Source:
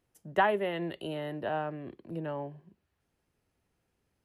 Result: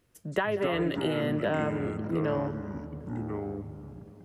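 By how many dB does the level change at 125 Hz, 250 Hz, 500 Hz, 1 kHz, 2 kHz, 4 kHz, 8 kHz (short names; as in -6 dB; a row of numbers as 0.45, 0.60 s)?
+9.5 dB, +9.0 dB, +4.0 dB, -2.5 dB, +1.5 dB, +4.5 dB, n/a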